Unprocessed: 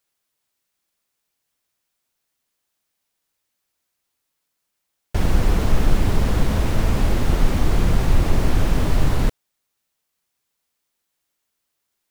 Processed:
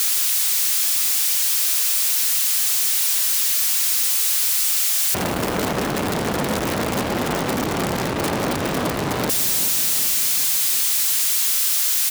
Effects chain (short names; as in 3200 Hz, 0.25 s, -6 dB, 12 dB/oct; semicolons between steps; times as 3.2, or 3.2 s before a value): switching spikes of -16.5 dBFS; HPF 200 Hz 12 dB/oct; high shelf 7900 Hz -9.5 dB; feedback echo 0.385 s, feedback 59%, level -17 dB; core saturation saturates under 1200 Hz; gain +8 dB